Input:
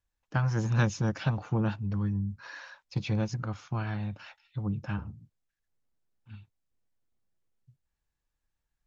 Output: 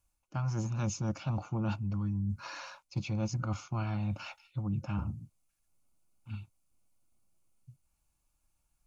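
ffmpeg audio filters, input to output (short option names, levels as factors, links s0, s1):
-af "areverse,acompressor=threshold=0.0158:ratio=8,areverse,superequalizer=7b=0.447:11b=0.282:13b=0.631:15b=1.58:16b=2.82,volume=2"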